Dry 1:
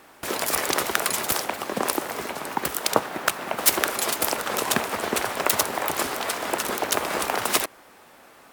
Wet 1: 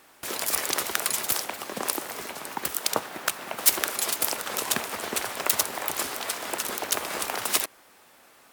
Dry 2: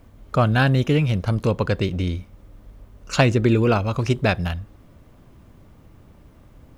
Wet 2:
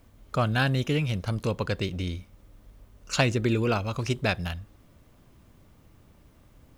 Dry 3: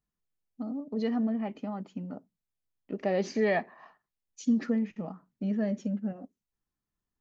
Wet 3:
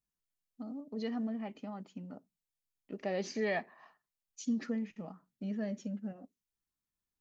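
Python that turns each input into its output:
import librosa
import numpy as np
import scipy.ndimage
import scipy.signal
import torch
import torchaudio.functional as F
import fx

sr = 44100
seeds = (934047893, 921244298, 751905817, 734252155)

y = fx.high_shelf(x, sr, hz=2300.0, db=7.5)
y = y * librosa.db_to_amplitude(-7.5)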